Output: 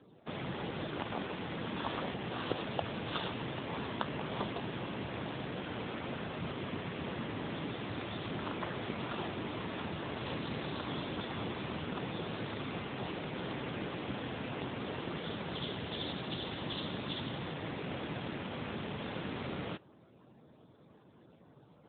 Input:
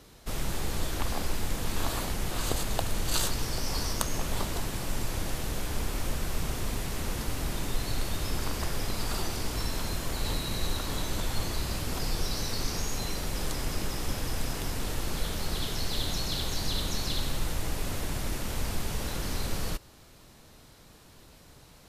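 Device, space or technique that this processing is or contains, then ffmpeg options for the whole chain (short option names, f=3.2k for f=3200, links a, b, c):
mobile call with aggressive noise cancelling: -af "highpass=130,afftdn=nr=32:nf=-57" -ar 8000 -c:a libopencore_amrnb -b:a 7950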